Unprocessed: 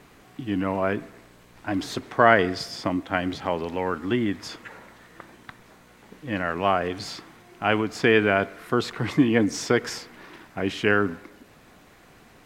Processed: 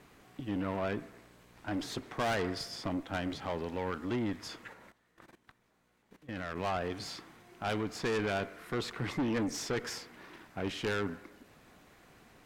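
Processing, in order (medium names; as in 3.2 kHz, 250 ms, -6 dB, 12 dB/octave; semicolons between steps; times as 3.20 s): valve stage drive 23 dB, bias 0.45; 4.73–6.57 s: level held to a coarse grid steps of 17 dB; trim -5 dB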